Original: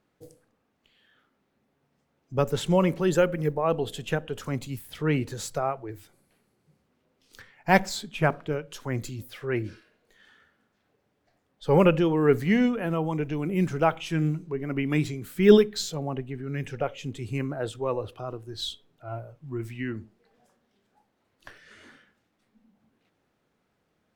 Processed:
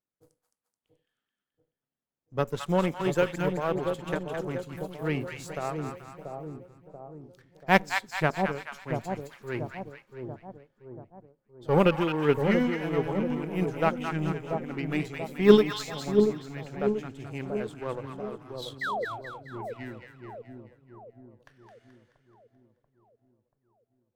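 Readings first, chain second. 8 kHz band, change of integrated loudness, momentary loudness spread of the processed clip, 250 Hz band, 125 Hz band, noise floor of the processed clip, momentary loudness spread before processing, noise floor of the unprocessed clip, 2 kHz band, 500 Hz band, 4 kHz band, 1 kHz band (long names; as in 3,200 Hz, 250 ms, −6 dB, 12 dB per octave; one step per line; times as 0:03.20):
−7.0 dB, −2.0 dB, 19 LU, −2.5 dB, −4.0 dB, below −85 dBFS, 15 LU, −74 dBFS, 0.0 dB, −1.5 dB, −3.0 dB, −0.5 dB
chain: power curve on the samples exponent 1.4
sound drawn into the spectrogram fall, 0:18.81–0:19.05, 420–2,100 Hz −32 dBFS
echo with a time of its own for lows and highs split 870 Hz, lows 685 ms, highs 215 ms, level −5 dB
level +1.5 dB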